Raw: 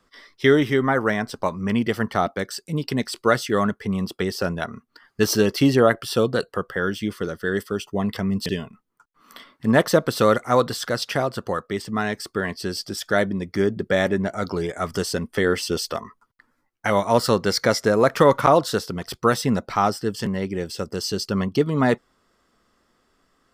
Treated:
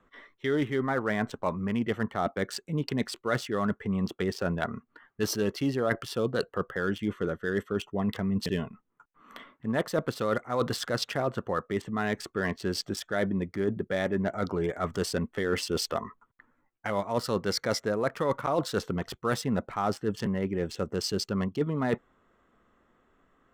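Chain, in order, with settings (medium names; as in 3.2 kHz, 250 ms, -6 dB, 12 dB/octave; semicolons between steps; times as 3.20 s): local Wiener filter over 9 samples; reverse; compression 6:1, threshold -25 dBFS, peak gain reduction 14 dB; reverse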